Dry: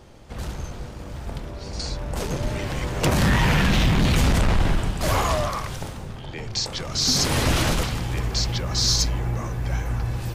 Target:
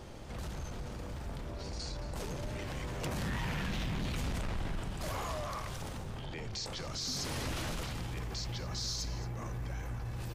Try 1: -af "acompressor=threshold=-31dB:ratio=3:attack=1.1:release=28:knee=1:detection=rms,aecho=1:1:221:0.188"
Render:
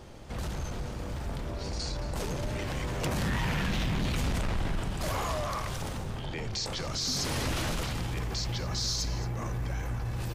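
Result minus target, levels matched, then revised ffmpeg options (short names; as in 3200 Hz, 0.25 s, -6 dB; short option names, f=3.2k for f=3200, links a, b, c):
compressor: peak gain reduction -6 dB
-af "acompressor=threshold=-40dB:ratio=3:attack=1.1:release=28:knee=1:detection=rms,aecho=1:1:221:0.188"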